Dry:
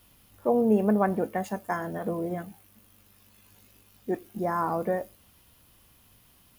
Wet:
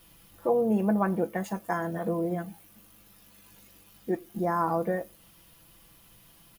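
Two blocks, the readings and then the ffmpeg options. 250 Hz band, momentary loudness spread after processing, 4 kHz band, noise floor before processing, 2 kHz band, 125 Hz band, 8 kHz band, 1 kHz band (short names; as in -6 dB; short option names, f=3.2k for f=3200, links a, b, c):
-1.0 dB, 10 LU, n/a, -60 dBFS, 0.0 dB, +1.0 dB, +0.5 dB, -0.5 dB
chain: -filter_complex "[0:a]aecho=1:1:6:0.65,asplit=2[a][b];[b]acompressor=threshold=-36dB:ratio=6,volume=-1dB[c];[a][c]amix=inputs=2:normalize=0,volume=-4dB"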